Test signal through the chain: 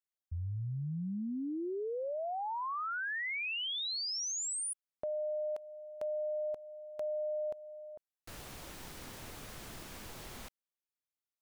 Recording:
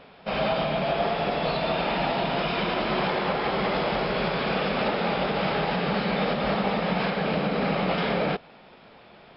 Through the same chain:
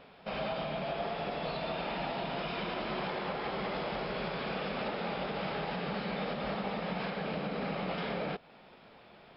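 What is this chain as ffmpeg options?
ffmpeg -i in.wav -af "acompressor=threshold=-35dB:ratio=1.5,volume=-5.5dB" out.wav

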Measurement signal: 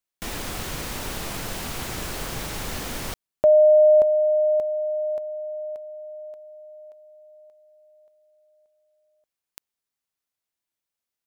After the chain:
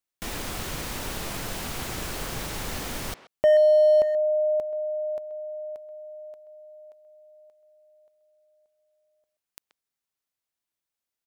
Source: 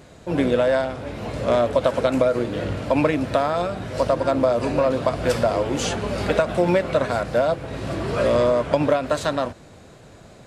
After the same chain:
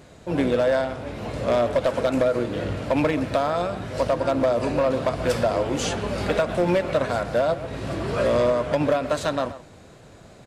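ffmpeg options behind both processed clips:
ffmpeg -i in.wav -filter_complex "[0:a]asplit=2[link_01][link_02];[link_02]adelay=130,highpass=300,lowpass=3400,asoftclip=type=hard:threshold=-14dB,volume=-14dB[link_03];[link_01][link_03]amix=inputs=2:normalize=0,asoftclip=type=hard:threshold=-12.5dB,volume=-1.5dB" out.wav

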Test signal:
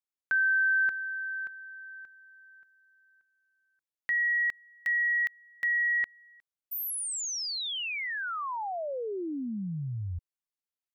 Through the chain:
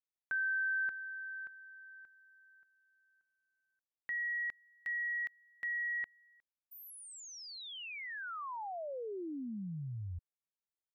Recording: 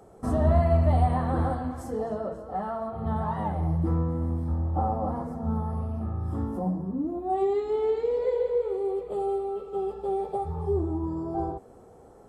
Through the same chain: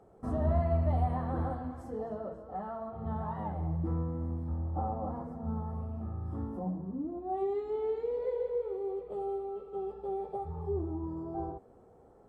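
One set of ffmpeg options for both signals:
ffmpeg -i in.wav -af "highshelf=frequency=3500:gain=-11.5,volume=-7dB" out.wav

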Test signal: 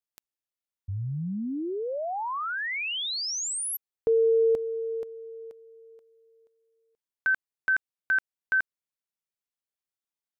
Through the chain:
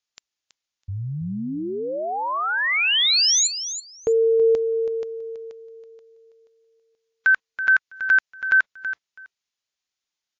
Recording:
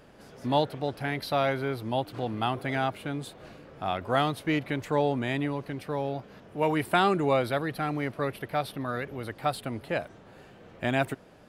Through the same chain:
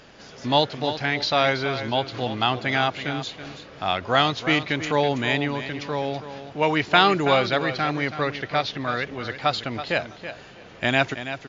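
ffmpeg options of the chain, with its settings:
ffmpeg -i in.wav -filter_complex "[0:a]equalizer=frequency=5000:width=0.31:gain=10.5,asplit=2[link_01][link_02];[link_02]aecho=0:1:327|654:0.282|0.0451[link_03];[link_01][link_03]amix=inputs=2:normalize=0,volume=3dB" -ar 16000 -c:a libmp3lame -b:a 56k out.mp3

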